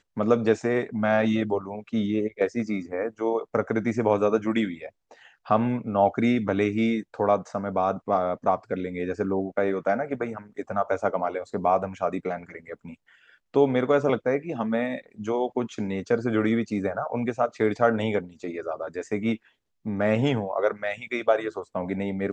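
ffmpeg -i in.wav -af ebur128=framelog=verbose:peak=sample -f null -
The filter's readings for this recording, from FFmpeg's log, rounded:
Integrated loudness:
  I:         -26.1 LUFS
  Threshold: -36.4 LUFS
Loudness range:
  LRA:         2.9 LU
  Threshold: -46.5 LUFS
  LRA low:   -27.8 LUFS
  LRA high:  -24.9 LUFS
Sample peak:
  Peak:       -7.2 dBFS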